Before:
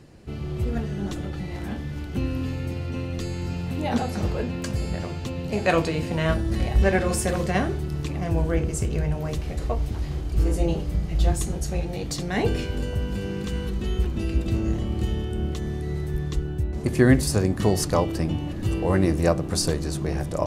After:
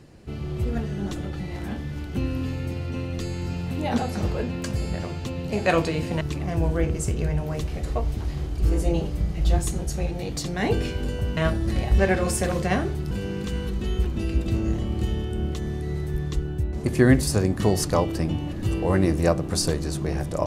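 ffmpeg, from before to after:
ffmpeg -i in.wav -filter_complex "[0:a]asplit=4[link_01][link_02][link_03][link_04];[link_01]atrim=end=6.212[link_05];[link_02]atrim=start=7.948:end=13.112[link_06];[link_03]atrim=start=6.208:end=7.952[link_07];[link_04]atrim=start=13.108[link_08];[link_05][link_06]acrossfade=duration=0.004:curve1=hsin:curve2=hsin[link_09];[link_09][link_07]acrossfade=duration=0.004:curve1=hsin:curve2=hsin[link_10];[link_10][link_08]acrossfade=duration=0.004:curve1=hsin:curve2=hsin" out.wav

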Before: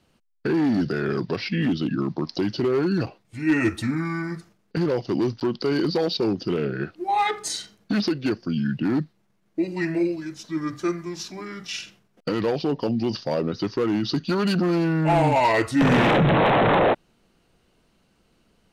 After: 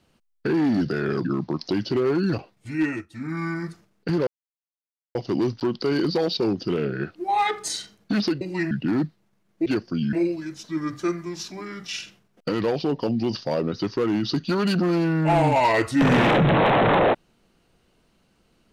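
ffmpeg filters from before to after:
ffmpeg -i in.wav -filter_complex "[0:a]asplit=9[link_01][link_02][link_03][link_04][link_05][link_06][link_07][link_08][link_09];[link_01]atrim=end=1.252[link_10];[link_02]atrim=start=1.928:end=3.74,asetpts=PTS-STARTPTS,afade=type=out:start_time=1.482:duration=0.33:silence=0.0668344[link_11];[link_03]atrim=start=3.74:end=3.78,asetpts=PTS-STARTPTS,volume=-23.5dB[link_12];[link_04]atrim=start=3.78:end=4.95,asetpts=PTS-STARTPTS,afade=type=in:duration=0.33:silence=0.0668344,afade=type=out:start_time=1.166:duration=0.004:curve=hsin,apad=pad_dur=0.88[link_13];[link_05]atrim=start=4.95:end=8.212,asetpts=PTS-STARTPTS,afade=type=in:duration=0.004:curve=hsin[link_14];[link_06]atrim=start=9.628:end=9.932[link_15];[link_07]atrim=start=8.678:end=9.632[link_16];[link_08]atrim=start=8.208:end=8.682[link_17];[link_09]atrim=start=9.928[link_18];[link_11][link_12][link_13][link_14]concat=n=4:v=0:a=1[link_19];[link_10][link_19]acrossfade=duration=0.004:curve1=hsin:curve2=hsin[link_20];[link_20][link_15]acrossfade=duration=0.004:curve1=hsin:curve2=hsin[link_21];[link_21][link_16]acrossfade=duration=0.004:curve1=hsin:curve2=hsin[link_22];[link_22][link_17]acrossfade=duration=0.004:curve1=hsin:curve2=hsin[link_23];[link_23][link_18]acrossfade=duration=0.004:curve1=hsin:curve2=hsin" out.wav

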